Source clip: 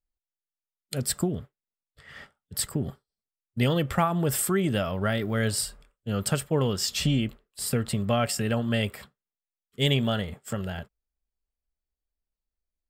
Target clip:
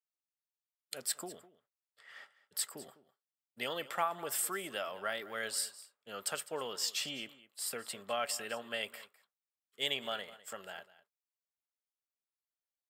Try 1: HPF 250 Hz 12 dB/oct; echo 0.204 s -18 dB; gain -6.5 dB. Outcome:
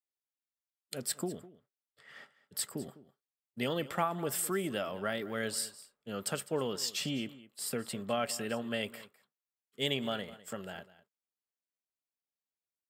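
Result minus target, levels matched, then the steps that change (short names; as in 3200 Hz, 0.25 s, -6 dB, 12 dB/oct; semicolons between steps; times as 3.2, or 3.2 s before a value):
250 Hz band +11.0 dB
change: HPF 640 Hz 12 dB/oct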